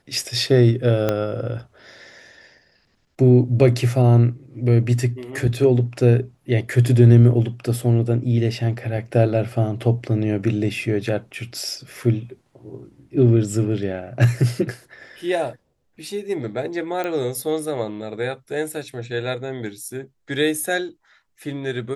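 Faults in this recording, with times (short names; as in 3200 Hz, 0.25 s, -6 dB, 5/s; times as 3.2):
1.09 pop -7 dBFS
17.04 pop -14 dBFS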